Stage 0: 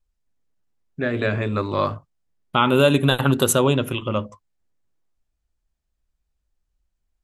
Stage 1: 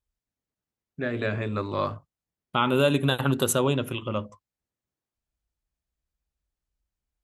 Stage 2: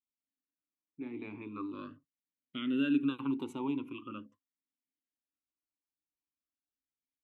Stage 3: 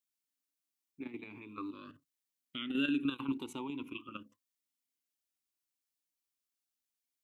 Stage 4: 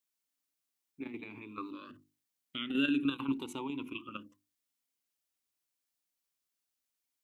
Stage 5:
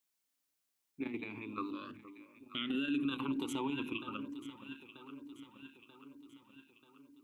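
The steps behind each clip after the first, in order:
HPF 40 Hz; gain -5.5 dB
vowel sweep i-u 0.42 Hz
high shelf 2100 Hz +11.5 dB; level quantiser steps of 10 dB
notches 50/100/150/200/250/300/350 Hz; gain +2.5 dB
echo with dull and thin repeats by turns 0.468 s, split 960 Hz, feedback 73%, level -13 dB; limiter -29.5 dBFS, peak gain reduction 11 dB; gain +2.5 dB

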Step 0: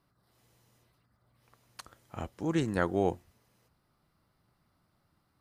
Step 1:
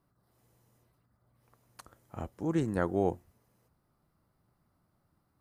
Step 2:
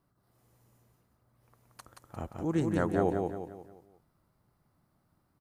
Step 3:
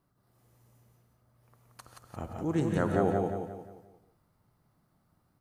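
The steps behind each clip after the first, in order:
bell 3500 Hz -9 dB 2.2 oct
feedback echo 0.176 s, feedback 41%, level -4 dB
reverb, pre-delay 3 ms, DRR 5.5 dB

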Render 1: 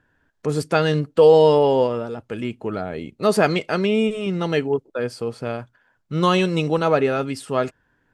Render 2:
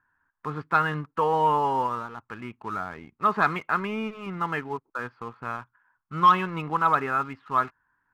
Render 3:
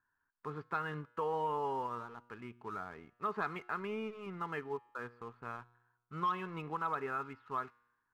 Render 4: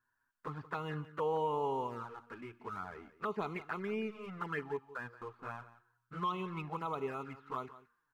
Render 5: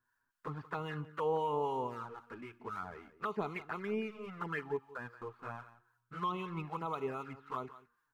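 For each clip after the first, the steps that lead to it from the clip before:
Bessel low-pass 1400 Hz, order 4; resonant low shelf 770 Hz -11 dB, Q 3; sample leveller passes 1; gain -2 dB
compressor 2:1, threshold -24 dBFS, peak gain reduction 6.5 dB; bell 420 Hz +7 dB 0.29 oct; resonator 120 Hz, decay 1 s, harmonics all, mix 40%; gain -7 dB
envelope flanger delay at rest 8.4 ms, full sweep at -34 dBFS; echo 0.176 s -16.5 dB; gain +3.5 dB
harmonic tremolo 3.8 Hz, depth 50%, crossover 870 Hz; gain +2.5 dB

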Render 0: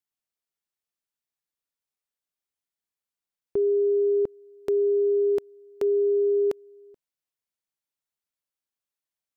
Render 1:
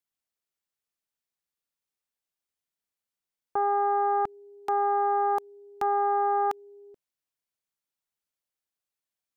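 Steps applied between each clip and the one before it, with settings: self-modulated delay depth 0.57 ms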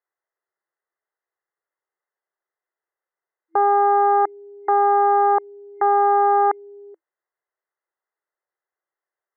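FFT band-pass 330–2100 Hz; gain +8.5 dB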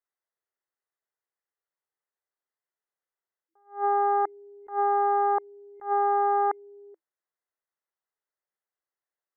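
attack slew limiter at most 200 dB/s; gain -7 dB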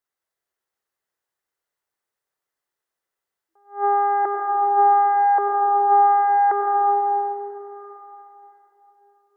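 reverb RT60 3.9 s, pre-delay 77 ms, DRR 0 dB; gain +5 dB

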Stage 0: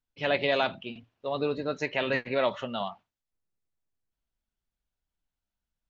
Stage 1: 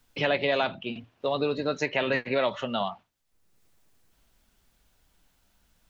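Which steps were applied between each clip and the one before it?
three-band squash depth 70%; gain +1.5 dB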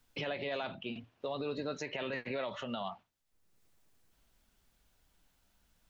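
limiter -23 dBFS, peak gain reduction 11 dB; gain -5 dB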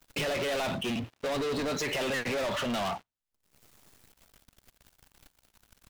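sample leveller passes 5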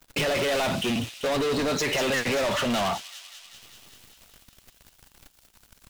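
thin delay 0.194 s, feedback 71%, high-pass 3800 Hz, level -6 dB; gain +5.5 dB

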